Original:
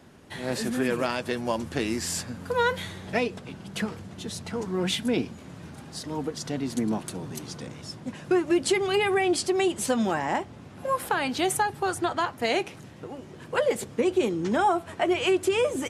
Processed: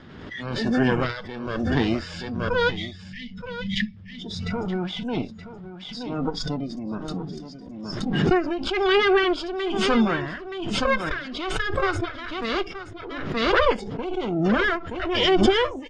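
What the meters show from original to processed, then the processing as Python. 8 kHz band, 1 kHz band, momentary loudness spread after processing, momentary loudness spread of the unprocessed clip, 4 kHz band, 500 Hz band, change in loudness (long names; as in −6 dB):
−10.5 dB, +1.0 dB, 15 LU, 15 LU, +5.0 dB, +1.5 dB, +2.5 dB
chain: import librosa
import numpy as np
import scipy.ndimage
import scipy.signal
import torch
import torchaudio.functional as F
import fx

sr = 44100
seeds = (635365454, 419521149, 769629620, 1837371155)

p1 = fx.lower_of_two(x, sr, delay_ms=0.6)
p2 = scipy.signal.sosfilt(scipy.signal.butter(4, 4400.0, 'lowpass', fs=sr, output='sos'), p1)
p3 = fx.spec_box(p2, sr, start_s=2.69, length_s=1.28, low_hz=270.0, high_hz=1700.0, gain_db=-21)
p4 = fx.noise_reduce_blind(p3, sr, reduce_db=19)
p5 = p4 * (1.0 - 0.8 / 2.0 + 0.8 / 2.0 * np.cos(2.0 * np.pi * 1.1 * (np.arange(len(p4)) / sr)))
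p6 = p5 + fx.echo_single(p5, sr, ms=924, db=-13.0, dry=0)
p7 = fx.pre_swell(p6, sr, db_per_s=36.0)
y = p7 * 10.0 ** (6.5 / 20.0)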